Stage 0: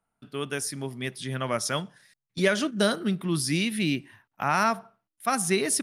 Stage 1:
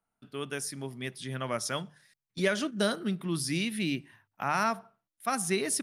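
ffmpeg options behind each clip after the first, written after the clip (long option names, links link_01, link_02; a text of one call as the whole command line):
ffmpeg -i in.wav -af "bandreject=frequency=50:width_type=h:width=6,bandreject=frequency=100:width_type=h:width=6,bandreject=frequency=150:width_type=h:width=6,volume=-4.5dB" out.wav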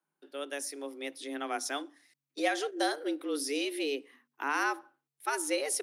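ffmpeg -i in.wav -af "afreqshift=140,acontrast=36,volume=-7.5dB" out.wav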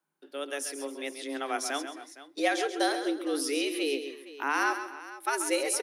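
ffmpeg -i in.wav -af "aecho=1:1:135|138|266|462:0.316|0.112|0.106|0.15,volume=2.5dB" out.wav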